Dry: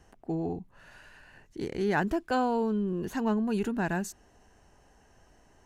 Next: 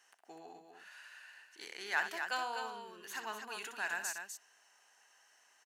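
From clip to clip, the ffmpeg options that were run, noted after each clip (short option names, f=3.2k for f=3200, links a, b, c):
-filter_complex "[0:a]highpass=1.5k,asplit=2[a][b];[b]aecho=0:1:62|250:0.355|0.473[c];[a][c]amix=inputs=2:normalize=0,volume=1dB"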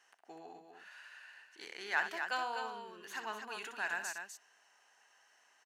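-af "highshelf=f=6.5k:g=-9.5,volume=1dB"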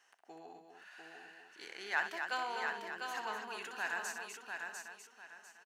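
-af "aecho=1:1:698|1396|2094|2792:0.562|0.157|0.0441|0.0123,volume=-1dB"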